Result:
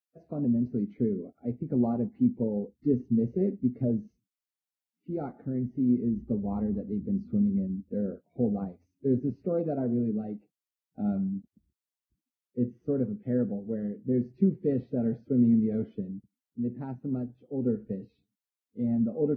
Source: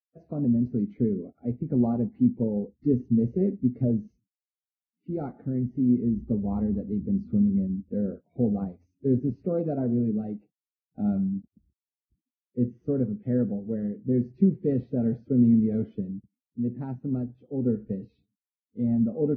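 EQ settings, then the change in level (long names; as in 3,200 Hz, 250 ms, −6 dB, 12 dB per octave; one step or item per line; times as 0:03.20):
low-shelf EQ 200 Hz −6.5 dB
0.0 dB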